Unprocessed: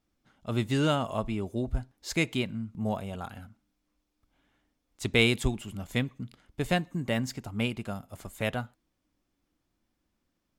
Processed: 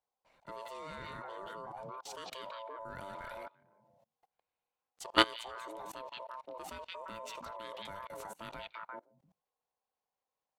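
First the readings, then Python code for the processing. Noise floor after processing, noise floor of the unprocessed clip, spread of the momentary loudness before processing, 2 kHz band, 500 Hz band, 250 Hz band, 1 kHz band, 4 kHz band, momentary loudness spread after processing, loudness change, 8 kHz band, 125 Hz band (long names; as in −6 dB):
below −85 dBFS, −80 dBFS, 15 LU, −8.5 dB, −10.0 dB, −16.0 dB, −1.0 dB, −3.5 dB, 16 LU, −9.5 dB, −9.5 dB, −25.5 dB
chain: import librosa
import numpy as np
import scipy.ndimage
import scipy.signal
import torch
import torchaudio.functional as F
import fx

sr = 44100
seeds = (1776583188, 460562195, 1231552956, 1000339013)

y = x * np.sin(2.0 * np.pi * 780.0 * np.arange(len(x)) / sr)
y = fx.echo_stepped(y, sr, ms=173, hz=3100.0, octaves=-1.4, feedback_pct=70, wet_db=-4.0)
y = fx.level_steps(y, sr, step_db=24)
y = F.gain(torch.from_numpy(y), 3.0).numpy()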